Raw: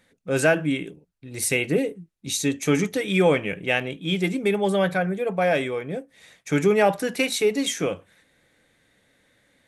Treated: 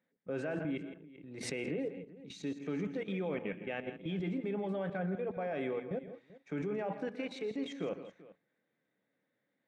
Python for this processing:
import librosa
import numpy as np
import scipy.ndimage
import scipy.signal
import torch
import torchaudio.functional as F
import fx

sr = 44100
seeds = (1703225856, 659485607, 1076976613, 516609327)

y = scipy.signal.sosfilt(scipy.signal.butter(4, 150.0, 'highpass', fs=sr, output='sos'), x)
y = fx.level_steps(y, sr, step_db=15)
y = fx.spacing_loss(y, sr, db_at_10k=34)
y = fx.echo_multitap(y, sr, ms=(121, 164, 388), db=(-15.0, -12.5, -19.0))
y = fx.pre_swell(y, sr, db_per_s=52.0, at=(0.47, 2.44))
y = y * librosa.db_to_amplitude(-4.0)